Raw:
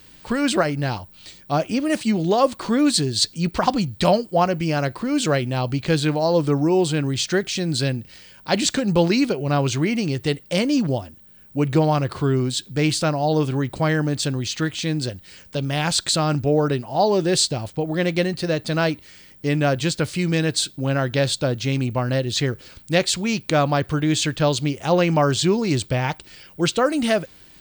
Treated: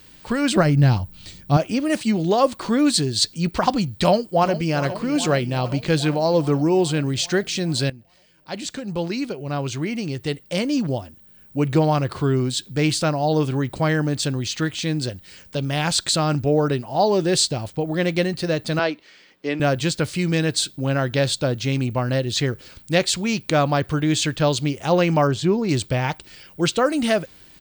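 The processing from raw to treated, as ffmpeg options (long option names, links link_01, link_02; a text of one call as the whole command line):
ffmpeg -i in.wav -filter_complex "[0:a]asettb=1/sr,asplit=3[link_01][link_02][link_03];[link_01]atrim=end=0.564[link_04];[link_02]atrim=start=0.56:end=1.57,asetpts=PTS-STARTPTS,afade=type=in:duration=0.004:curve=qsin,afade=type=out:start_time=1.006:duration=0.004:curve=qsin,bass=frequency=250:gain=12,treble=frequency=4000:gain=1[link_05];[link_03]atrim=start=1.566[link_06];[link_04][link_05]acrossfade=duration=0.004:curve1=hsin:curve2=qsin[link_07];[link_07][link_06]acrossfade=duration=0.004:curve1=qsin:curve2=hsin,asplit=2[link_08][link_09];[link_09]afade=type=in:start_time=4.01:duration=0.01,afade=type=out:start_time=4.75:duration=0.01,aecho=0:1:410|820|1230|1640|2050|2460|2870|3280|3690|4100|4510:0.211349|0.158512|0.118884|0.0891628|0.0668721|0.0501541|0.0376156|0.0282117|0.0211588|0.0158691|0.0119018[link_10];[link_08][link_10]amix=inputs=2:normalize=0,asettb=1/sr,asplit=3[link_11][link_12][link_13];[link_11]atrim=end=18.794[link_14];[link_12]atrim=start=18.79:end=19.6,asetpts=PTS-STARTPTS,afade=type=in:duration=0.004:curve=qsin,afade=type=out:start_time=0.806:duration=0.004:curve=qsin,acrossover=split=240 5500:gain=0.0794 1 0.1[link_15][link_16][link_17];[link_15][link_16][link_17]amix=inputs=3:normalize=0[link_18];[link_13]atrim=start=19.596[link_19];[link_14][link_18]acrossfade=duration=0.004:curve1=hsin:curve2=qsin[link_20];[link_20][link_19]acrossfade=duration=0.004:curve1=qsin:curve2=hsin,asettb=1/sr,asplit=3[link_21][link_22][link_23];[link_21]atrim=end=25.274[link_24];[link_22]atrim=start=25.27:end=25.69,asetpts=PTS-STARTPTS,afade=type=in:duration=0.004:curve=qsin,afade=type=out:start_time=0.416:duration=0.004:curve=qsin,highshelf=frequency=2300:gain=-11[link_25];[link_23]atrim=start=25.686[link_26];[link_24][link_25]acrossfade=duration=0.004:curve1=hsin:curve2=qsin[link_27];[link_27][link_26]acrossfade=duration=0.004:curve1=qsin:curve2=hsin,asplit=2[link_28][link_29];[link_28]atrim=end=7.9,asetpts=PTS-STARTPTS,afade=type=out:start_time=7.896:duration=0.004:curve=hsin:silence=0.149624[link_30];[link_29]atrim=start=7.9,asetpts=PTS-STARTPTS,afade=type=in:duration=3.78:silence=0.149624[link_31];[link_30][link_31]concat=n=2:v=0:a=1" out.wav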